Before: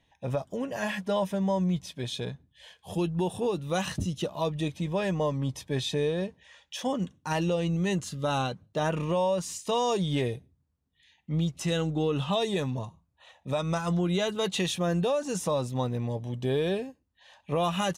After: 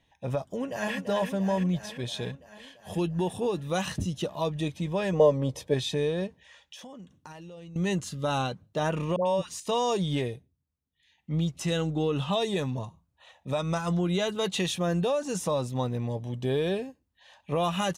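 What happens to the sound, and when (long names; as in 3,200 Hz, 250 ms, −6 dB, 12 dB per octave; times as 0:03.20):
0:00.43–0:00.95: delay throw 340 ms, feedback 70%, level −7 dB
0:05.13–0:05.74: parametric band 510 Hz +13.5 dB 0.71 octaves
0:06.27–0:07.76: downward compressor 10 to 1, threshold −42 dBFS
0:09.16–0:09.60: all-pass dispersion highs, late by 98 ms, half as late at 850 Hz
0:10.12–0:11.31: duck −8.5 dB, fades 0.38 s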